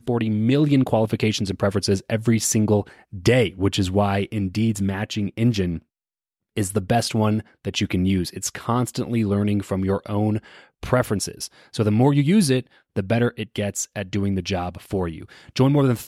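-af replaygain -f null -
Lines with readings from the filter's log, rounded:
track_gain = +2.5 dB
track_peak = 0.395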